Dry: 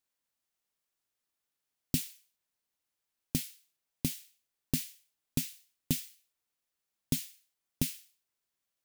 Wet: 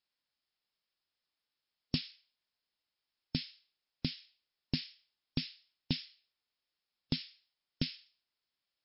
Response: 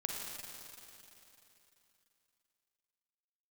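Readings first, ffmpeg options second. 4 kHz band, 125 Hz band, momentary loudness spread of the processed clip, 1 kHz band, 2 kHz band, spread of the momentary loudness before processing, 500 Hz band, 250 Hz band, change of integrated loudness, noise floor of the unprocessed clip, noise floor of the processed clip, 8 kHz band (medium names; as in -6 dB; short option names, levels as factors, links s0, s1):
+3.5 dB, -3.0 dB, 12 LU, -1.0 dB, +1.0 dB, 11 LU, -3.0 dB, -3.0 dB, -4.0 dB, under -85 dBFS, under -85 dBFS, under -35 dB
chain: -af "crystalizer=i=3:c=0,volume=2.37,asoftclip=hard,volume=0.422,volume=0.75" -ar 12000 -c:a libmp3lame -b:a 56k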